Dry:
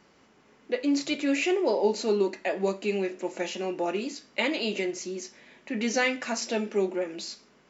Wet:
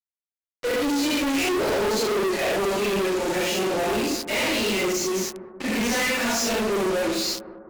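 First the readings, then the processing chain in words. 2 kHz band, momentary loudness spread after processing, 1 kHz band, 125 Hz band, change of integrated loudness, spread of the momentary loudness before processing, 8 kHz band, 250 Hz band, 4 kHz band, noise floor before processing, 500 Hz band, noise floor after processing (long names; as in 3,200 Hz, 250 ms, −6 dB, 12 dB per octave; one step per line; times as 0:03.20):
+6.0 dB, 4 LU, +7.0 dB, +6.5 dB, +5.0 dB, 9 LU, can't be measured, +4.0 dB, +8.5 dB, −61 dBFS, +4.0 dB, below −85 dBFS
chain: random phases in long frames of 200 ms
hum removal 172 Hz, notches 4
fuzz pedal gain 45 dB, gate −43 dBFS
bucket-brigade delay 199 ms, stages 2,048, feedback 58%, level −13 dB
level −9 dB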